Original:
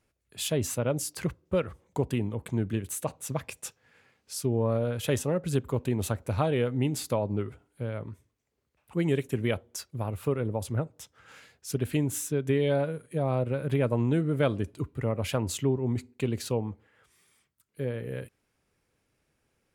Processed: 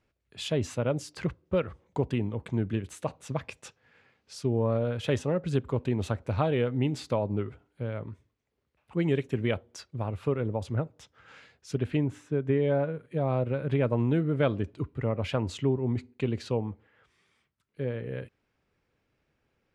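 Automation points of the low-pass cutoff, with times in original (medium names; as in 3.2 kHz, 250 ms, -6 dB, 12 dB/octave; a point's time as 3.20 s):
11.69 s 4.5 kHz
12.22 s 1.9 kHz
12.74 s 1.9 kHz
13.17 s 4 kHz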